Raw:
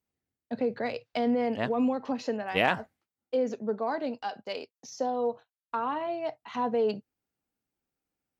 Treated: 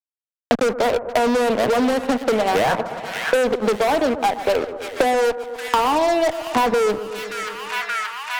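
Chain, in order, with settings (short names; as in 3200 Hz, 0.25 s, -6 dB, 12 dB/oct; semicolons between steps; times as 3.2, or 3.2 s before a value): Wiener smoothing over 25 samples; HPF 320 Hz 12 dB/oct; high shelf 3400 Hz -12 dB; fuzz box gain 38 dB, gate -46 dBFS; on a send: split-band echo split 1400 Hz, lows 0.122 s, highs 0.577 s, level -14 dB; on the sum: three-band squash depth 100%; gain -2 dB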